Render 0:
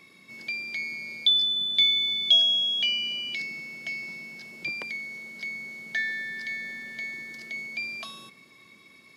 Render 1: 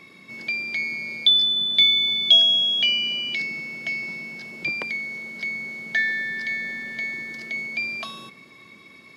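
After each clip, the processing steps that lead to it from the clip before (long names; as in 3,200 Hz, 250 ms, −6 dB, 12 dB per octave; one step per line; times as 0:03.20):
high-shelf EQ 4,600 Hz −8.5 dB
level +7.5 dB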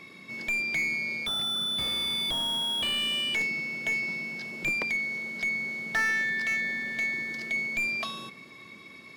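slew-rate limiting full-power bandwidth 120 Hz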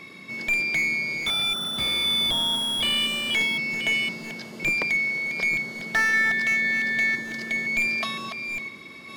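delay that plays each chunk backwards 511 ms, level −7 dB
level +4.5 dB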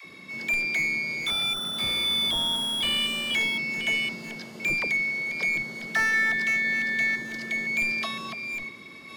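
all-pass dispersion lows, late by 51 ms, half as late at 450 Hz
level −2 dB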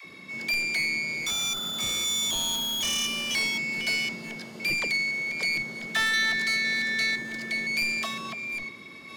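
phase distortion by the signal itself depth 0.12 ms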